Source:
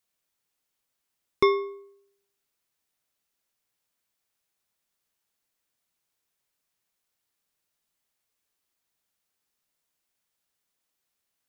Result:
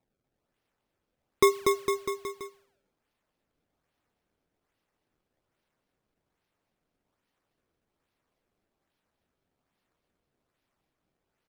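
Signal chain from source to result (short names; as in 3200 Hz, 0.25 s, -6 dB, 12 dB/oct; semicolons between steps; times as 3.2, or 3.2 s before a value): reverb removal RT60 0.9 s; decimation with a swept rate 27×, swing 160% 1.2 Hz; bouncing-ball echo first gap 0.24 s, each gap 0.9×, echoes 5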